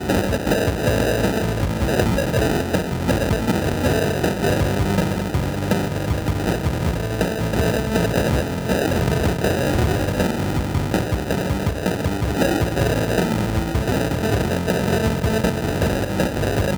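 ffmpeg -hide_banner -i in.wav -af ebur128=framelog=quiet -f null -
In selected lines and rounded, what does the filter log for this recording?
Integrated loudness:
  I:         -20.8 LUFS
  Threshold: -30.8 LUFS
Loudness range:
  LRA:         1.2 LU
  Threshold: -40.9 LUFS
  LRA low:   -21.5 LUFS
  LRA high:  -20.3 LUFS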